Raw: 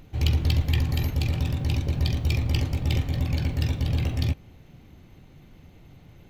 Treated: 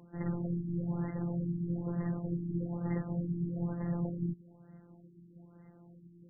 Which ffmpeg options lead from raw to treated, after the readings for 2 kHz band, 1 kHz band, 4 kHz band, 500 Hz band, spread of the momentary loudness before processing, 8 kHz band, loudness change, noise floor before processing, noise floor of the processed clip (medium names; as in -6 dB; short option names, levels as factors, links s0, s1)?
-18.0 dB, -7.5 dB, under -40 dB, -4.0 dB, 3 LU, under -35 dB, -10.0 dB, -51 dBFS, -58 dBFS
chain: -af "highpass=f=110:w=0.5412,highpass=f=110:w=1.3066,afftfilt=real='hypot(re,im)*cos(PI*b)':imag='0':win_size=1024:overlap=0.75,afftfilt=real='re*lt(b*sr/1024,380*pow(2100/380,0.5+0.5*sin(2*PI*1.1*pts/sr)))':imag='im*lt(b*sr/1024,380*pow(2100/380,0.5+0.5*sin(2*PI*1.1*pts/sr)))':win_size=1024:overlap=0.75"